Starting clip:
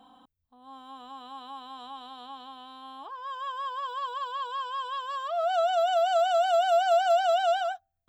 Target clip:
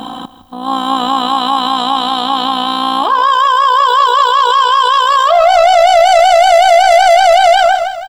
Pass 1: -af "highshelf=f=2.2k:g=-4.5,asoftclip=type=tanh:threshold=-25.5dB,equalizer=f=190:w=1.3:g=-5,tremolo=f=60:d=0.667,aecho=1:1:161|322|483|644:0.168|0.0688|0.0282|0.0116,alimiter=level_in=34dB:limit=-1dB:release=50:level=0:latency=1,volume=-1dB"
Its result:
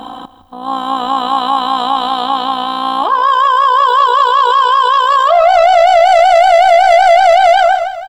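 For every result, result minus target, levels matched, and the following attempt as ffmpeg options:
250 Hz band -4.0 dB; 4000 Hz band -4.0 dB
-af "highshelf=f=2.2k:g=-4.5,asoftclip=type=tanh:threshold=-25.5dB,equalizer=f=190:w=1.3:g=4,tremolo=f=60:d=0.667,aecho=1:1:161|322|483|644:0.168|0.0688|0.0282|0.0116,alimiter=level_in=34dB:limit=-1dB:release=50:level=0:latency=1,volume=-1dB"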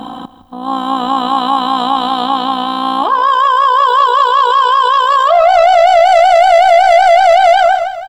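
4000 Hz band -4.5 dB
-af "highshelf=f=2.2k:g=4,asoftclip=type=tanh:threshold=-25.5dB,equalizer=f=190:w=1.3:g=4,tremolo=f=60:d=0.667,aecho=1:1:161|322|483|644:0.168|0.0688|0.0282|0.0116,alimiter=level_in=34dB:limit=-1dB:release=50:level=0:latency=1,volume=-1dB"

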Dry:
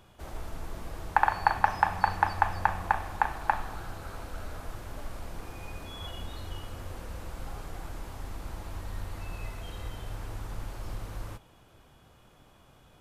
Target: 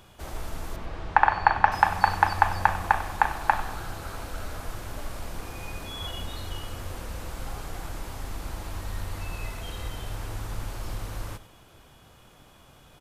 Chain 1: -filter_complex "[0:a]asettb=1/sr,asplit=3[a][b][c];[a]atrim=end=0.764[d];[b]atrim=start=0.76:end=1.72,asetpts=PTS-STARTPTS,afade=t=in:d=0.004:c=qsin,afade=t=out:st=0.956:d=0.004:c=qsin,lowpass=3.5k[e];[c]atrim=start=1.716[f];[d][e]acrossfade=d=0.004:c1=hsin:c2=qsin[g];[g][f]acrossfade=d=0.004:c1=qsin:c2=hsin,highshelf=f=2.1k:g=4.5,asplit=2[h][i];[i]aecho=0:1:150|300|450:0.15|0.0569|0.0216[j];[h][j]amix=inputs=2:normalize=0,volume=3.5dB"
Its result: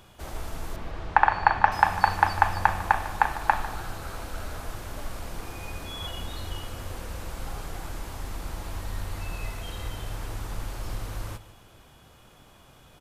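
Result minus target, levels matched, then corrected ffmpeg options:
echo 54 ms late
-filter_complex "[0:a]asettb=1/sr,asplit=3[a][b][c];[a]atrim=end=0.764[d];[b]atrim=start=0.76:end=1.72,asetpts=PTS-STARTPTS,afade=t=in:d=0.004:c=qsin,afade=t=out:st=0.956:d=0.004:c=qsin,lowpass=3.5k[e];[c]atrim=start=1.716[f];[d][e]acrossfade=d=0.004:c1=hsin:c2=qsin[g];[g][f]acrossfade=d=0.004:c1=qsin:c2=hsin,highshelf=f=2.1k:g=4.5,asplit=2[h][i];[i]aecho=0:1:96|192|288:0.15|0.0569|0.0216[j];[h][j]amix=inputs=2:normalize=0,volume=3.5dB"

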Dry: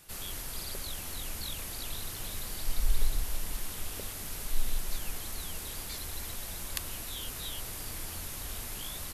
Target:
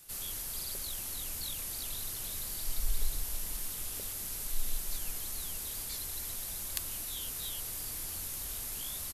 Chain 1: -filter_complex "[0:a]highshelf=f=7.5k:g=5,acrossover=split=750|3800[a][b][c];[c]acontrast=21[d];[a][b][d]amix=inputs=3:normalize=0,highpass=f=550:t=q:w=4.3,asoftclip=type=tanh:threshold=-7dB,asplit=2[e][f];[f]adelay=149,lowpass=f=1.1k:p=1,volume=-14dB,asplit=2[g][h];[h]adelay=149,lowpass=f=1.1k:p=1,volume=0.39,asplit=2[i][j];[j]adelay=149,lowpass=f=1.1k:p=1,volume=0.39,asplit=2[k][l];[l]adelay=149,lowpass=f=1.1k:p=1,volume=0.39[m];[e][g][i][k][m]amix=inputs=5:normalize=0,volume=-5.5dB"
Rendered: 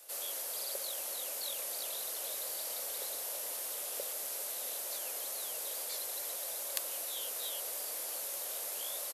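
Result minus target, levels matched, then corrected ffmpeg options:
500 Hz band +8.5 dB
-filter_complex "[0:a]highshelf=f=7.5k:g=5,acrossover=split=750|3800[a][b][c];[c]acontrast=21[d];[a][b][d]amix=inputs=3:normalize=0,asoftclip=type=tanh:threshold=-7dB,asplit=2[e][f];[f]adelay=149,lowpass=f=1.1k:p=1,volume=-14dB,asplit=2[g][h];[h]adelay=149,lowpass=f=1.1k:p=1,volume=0.39,asplit=2[i][j];[j]adelay=149,lowpass=f=1.1k:p=1,volume=0.39,asplit=2[k][l];[l]adelay=149,lowpass=f=1.1k:p=1,volume=0.39[m];[e][g][i][k][m]amix=inputs=5:normalize=0,volume=-5.5dB"

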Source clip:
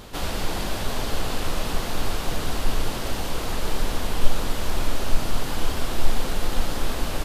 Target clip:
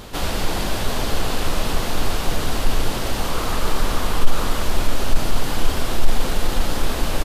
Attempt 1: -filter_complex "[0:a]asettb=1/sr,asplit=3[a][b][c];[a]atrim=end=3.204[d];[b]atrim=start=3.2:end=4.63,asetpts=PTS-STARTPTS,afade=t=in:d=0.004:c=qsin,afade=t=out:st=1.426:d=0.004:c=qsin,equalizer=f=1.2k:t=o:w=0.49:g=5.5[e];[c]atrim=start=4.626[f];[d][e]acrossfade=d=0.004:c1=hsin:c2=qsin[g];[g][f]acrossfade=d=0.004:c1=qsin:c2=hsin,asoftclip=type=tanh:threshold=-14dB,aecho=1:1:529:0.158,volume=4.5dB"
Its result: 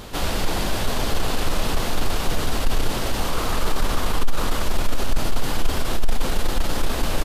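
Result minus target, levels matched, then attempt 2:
soft clip: distortion +9 dB
-filter_complex "[0:a]asettb=1/sr,asplit=3[a][b][c];[a]atrim=end=3.204[d];[b]atrim=start=3.2:end=4.63,asetpts=PTS-STARTPTS,afade=t=in:d=0.004:c=qsin,afade=t=out:st=1.426:d=0.004:c=qsin,equalizer=f=1.2k:t=o:w=0.49:g=5.5[e];[c]atrim=start=4.626[f];[d][e]acrossfade=d=0.004:c1=hsin:c2=qsin[g];[g][f]acrossfade=d=0.004:c1=qsin:c2=hsin,asoftclip=type=tanh:threshold=-5.5dB,aecho=1:1:529:0.158,volume=4.5dB"

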